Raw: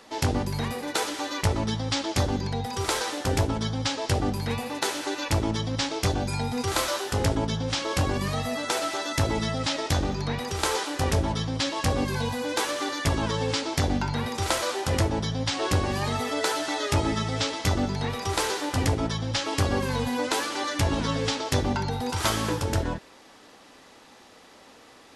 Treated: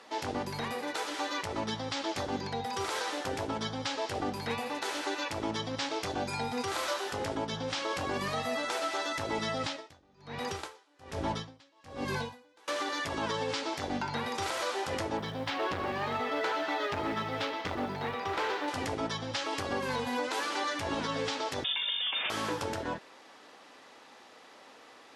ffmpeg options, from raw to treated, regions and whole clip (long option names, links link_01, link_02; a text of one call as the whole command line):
ffmpeg -i in.wav -filter_complex "[0:a]asettb=1/sr,asplit=3[link_01][link_02][link_03];[link_01]atrim=end=9.634[link_04];[link_02]atrim=start=9.63:end=12.68,asetpts=PTS-STARTPTS,afade=type=in:duration=0.004:curve=qsin,afade=type=out:start_time=3.046:duration=0.004:curve=qsin,lowshelf=frequency=180:gain=7,aeval=exprs='val(0)*pow(10,-34*(0.5-0.5*cos(2*PI*1.2*n/s))/20)':channel_layout=same[link_05];[link_03]atrim=start=12.676[link_06];[link_04][link_05]acrossfade=duration=0.004:curve1=hsin:curve2=qsin[link_07];[link_07][link_06]acrossfade=duration=0.004:curve1=qsin:curve2=hsin,asettb=1/sr,asplit=3[link_08][link_09][link_10];[link_08]atrim=end=15.174[link_11];[link_09]atrim=start=15.17:end=18.68,asetpts=PTS-STARTPTS,afade=type=in:duration=0.004:curve=qsin,afade=type=out:start_time=3.506:duration=0.004:curve=qsin,lowpass=3100,acrusher=bits=7:mode=log:mix=0:aa=0.000001,asoftclip=type=hard:threshold=-23.5dB[link_12];[link_10]atrim=start=18.676[link_13];[link_11][link_12]acrossfade=duration=0.004:curve1=hsin:curve2=qsin[link_14];[link_14][link_13]acrossfade=duration=0.004:curve1=qsin:curve2=hsin,asettb=1/sr,asplit=3[link_15][link_16][link_17];[link_15]atrim=end=21.644[link_18];[link_16]atrim=start=21.64:end=22.3,asetpts=PTS-STARTPTS,afade=type=in:duration=0.004:curve=qsin,afade=type=out:start_time=0.656:duration=0.004:curve=qsin,aemphasis=mode=production:type=50fm,lowpass=frequency=3100:width_type=q:width=0.5098,lowpass=frequency=3100:width_type=q:width=0.6013,lowpass=frequency=3100:width_type=q:width=0.9,lowpass=frequency=3100:width_type=q:width=2.563,afreqshift=-3700[link_19];[link_17]atrim=start=22.296[link_20];[link_18][link_19]acrossfade=duration=0.004:curve1=hsin:curve2=qsin[link_21];[link_21][link_20]acrossfade=duration=0.004:curve1=qsin:curve2=hsin,highpass=frequency=510:poles=1,aemphasis=mode=reproduction:type=cd,alimiter=limit=-22.5dB:level=0:latency=1:release=134" out.wav